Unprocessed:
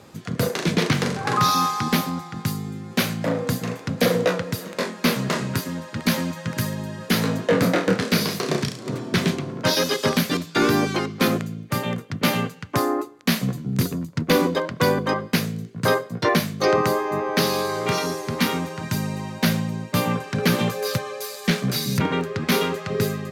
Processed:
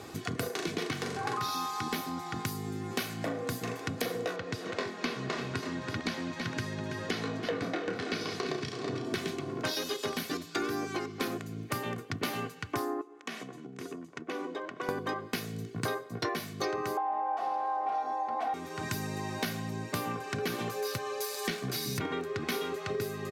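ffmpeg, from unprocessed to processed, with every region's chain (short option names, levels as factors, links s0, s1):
-filter_complex "[0:a]asettb=1/sr,asplit=3[s0][s1][s2];[s0]atrim=end=4.364[s3];[s1]atrim=start=4.36:end=9.05,asetpts=PTS-STARTPTS,afade=t=in:d=0.004:c=qsin,afade=t=out:st=4.686:d=0.004:c=qsin,lowpass=5300,aecho=1:1:329:0.266,atrim=end_sample=206829[s4];[s2]atrim=start=9.046[s5];[s3][s4]acrossfade=d=0.004:c1=hsin:c2=qsin[s6];[s6][s5]acrossfade=d=0.004:c1=qsin:c2=hsin,asettb=1/sr,asplit=3[s7][s8][s9];[s7]atrim=end=13.014[s10];[s8]atrim=start=13.01:end=14.89,asetpts=PTS-STARTPTS,afade=t=in:d=0.004:c=qsin,afade=t=out:st=1.876:d=0.004:c=qsin,acompressor=threshold=0.0112:ratio=3:attack=3.2:release=140:knee=1:detection=peak,highpass=260,lowpass=6200,equalizer=f=4400:w=2.2:g=-8[s11];[s9]atrim=start=14.886[s12];[s10][s11]acrossfade=d=0.004:c1=hsin:c2=qsin[s13];[s13][s12]acrossfade=d=0.004:c1=qsin:c2=hsin,asettb=1/sr,asplit=3[s14][s15][s16];[s14]atrim=end=16.974[s17];[s15]atrim=start=16.97:end=18.54,asetpts=PTS-STARTPTS,afade=t=in:d=0.004:c=qsin,afade=t=out:st=1.566:d=0.004:c=qsin,aecho=1:1:3.8:0.82,atrim=end_sample=69237,aeval=exprs='0.596*sin(PI/2*3.98*val(0)/0.596)':c=same,bandpass=f=770:t=q:w=4.7[s18];[s16]atrim=start=18.536[s19];[s17][s18]acrossfade=d=0.004:c1=hsin:c2=qsin[s20];[s20][s19]acrossfade=d=0.004:c1=qsin:c2=hsin,lowshelf=f=67:g=-6,aecho=1:1:2.7:0.55,acompressor=threshold=0.02:ratio=6,volume=1.26"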